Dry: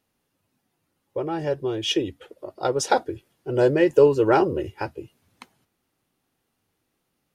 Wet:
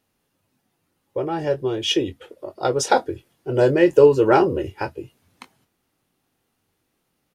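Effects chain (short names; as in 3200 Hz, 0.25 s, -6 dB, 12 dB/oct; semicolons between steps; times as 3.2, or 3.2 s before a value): doubler 23 ms -10.5 dB; gain +2.5 dB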